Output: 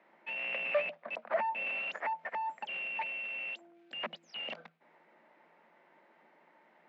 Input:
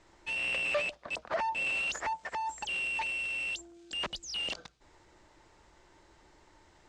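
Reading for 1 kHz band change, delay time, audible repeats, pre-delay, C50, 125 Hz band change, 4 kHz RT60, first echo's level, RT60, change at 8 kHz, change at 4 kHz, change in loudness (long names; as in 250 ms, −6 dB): −1.0 dB, no echo audible, no echo audible, no reverb audible, no reverb audible, can't be measured, no reverb audible, no echo audible, no reverb audible, below −25 dB, −7.0 dB, −3.5 dB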